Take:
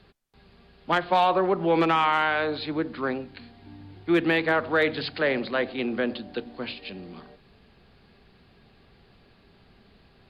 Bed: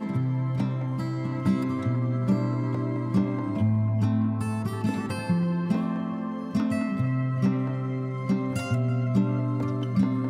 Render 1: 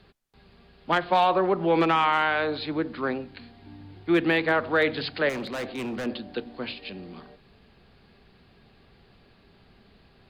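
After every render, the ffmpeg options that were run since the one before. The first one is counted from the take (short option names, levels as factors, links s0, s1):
-filter_complex "[0:a]asettb=1/sr,asplit=3[s0][s1][s2];[s0]atrim=end=5.294[s3];[s1]atrim=start=5.29:end=6.06,asetpts=PTS-STARTPTS,afade=t=in:d=0.004:c=qsin,afade=t=out:st=0.766:d=0.004:c=qsin,volume=28.2,asoftclip=hard,volume=0.0355[s4];[s2]atrim=start=6.056[s5];[s3][s4]acrossfade=d=0.004:c1=hsin:c2=qsin[s6];[s6][s5]acrossfade=d=0.004:c1=qsin:c2=hsin"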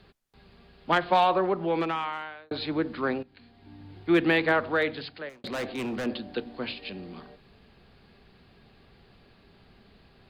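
-filter_complex "[0:a]asplit=4[s0][s1][s2][s3];[s0]atrim=end=2.51,asetpts=PTS-STARTPTS,afade=t=out:st=1.11:d=1.4[s4];[s1]atrim=start=2.51:end=3.23,asetpts=PTS-STARTPTS,afade=t=in:d=0.004:c=hsin,afade=t=out:st=0.716:d=0.004:c=hsin:silence=0.149624[s5];[s2]atrim=start=3.23:end=5.44,asetpts=PTS-STARTPTS,afade=t=in:d=0.76:silence=0.149624,afade=t=out:st=1.27:d=0.94[s6];[s3]atrim=start=5.44,asetpts=PTS-STARTPTS,afade=t=in:d=0.004:c=hsin[s7];[s4][s5][s6][s7]concat=n=4:v=0:a=1"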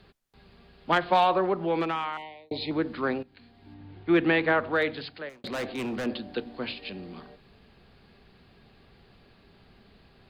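-filter_complex "[0:a]asettb=1/sr,asplit=3[s0][s1][s2];[s0]atrim=end=2.174[s3];[s1]atrim=start=2.17:end=2.71,asetpts=PTS-STARTPTS,afade=t=in:d=0.004:c=qsin,afade=t=out:st=0.536:d=0.004:c=qsin,asuperstop=centerf=1400:order=12:qfactor=1.6[s4];[s2]atrim=start=2.706[s5];[s3][s4]acrossfade=d=0.004:c1=hsin:c2=qsin[s6];[s6][s5]acrossfade=d=0.004:c1=qsin:c2=hsin,asettb=1/sr,asplit=3[s7][s8][s9];[s7]atrim=end=3.744[s10];[s8]atrim=start=3.74:end=4.73,asetpts=PTS-STARTPTS,afade=t=in:d=0.004:c=qsin,afade=t=out:st=0.986:d=0.004:c=qsin,lowpass=3500[s11];[s9]atrim=start=4.726[s12];[s10][s11]acrossfade=d=0.004:c1=hsin:c2=qsin[s13];[s13][s12]acrossfade=d=0.004:c1=qsin:c2=hsin"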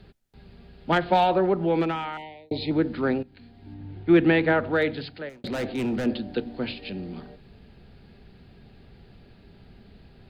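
-af "lowshelf=f=360:g=9,bandreject=f=1100:w=6.2"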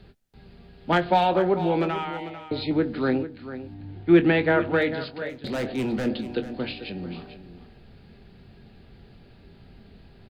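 -filter_complex "[0:a]asplit=2[s0][s1];[s1]adelay=23,volume=0.299[s2];[s0][s2]amix=inputs=2:normalize=0,aecho=1:1:444:0.237"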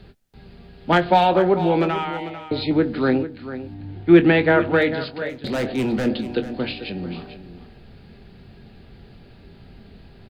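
-af "volume=1.68"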